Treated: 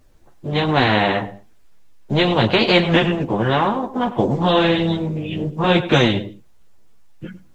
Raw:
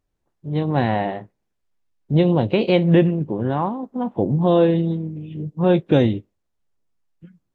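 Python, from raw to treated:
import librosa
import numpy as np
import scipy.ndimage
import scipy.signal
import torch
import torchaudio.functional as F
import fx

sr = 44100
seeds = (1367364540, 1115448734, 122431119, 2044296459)

y = fx.echo_feedback(x, sr, ms=102, feedback_pct=20, wet_db=-21.0)
y = fx.chorus_voices(y, sr, voices=6, hz=0.75, base_ms=12, depth_ms=3.7, mix_pct=50)
y = fx.spectral_comp(y, sr, ratio=2.0)
y = y * 10.0 ** (4.0 / 20.0)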